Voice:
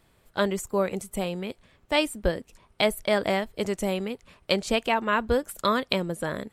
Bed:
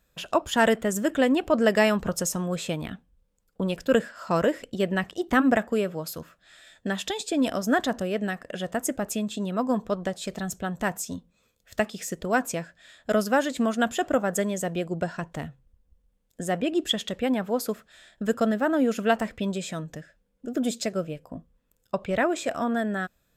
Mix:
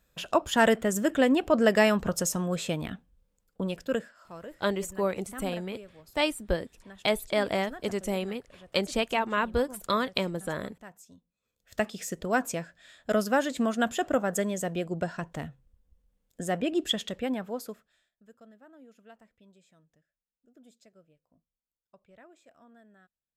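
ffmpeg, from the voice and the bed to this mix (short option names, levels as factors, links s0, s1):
-filter_complex "[0:a]adelay=4250,volume=0.708[s0];[1:a]volume=7.08,afade=t=out:st=3.33:d=0.97:silence=0.105925,afade=t=in:st=11.41:d=0.43:silence=0.125893,afade=t=out:st=16.92:d=1.19:silence=0.0398107[s1];[s0][s1]amix=inputs=2:normalize=0"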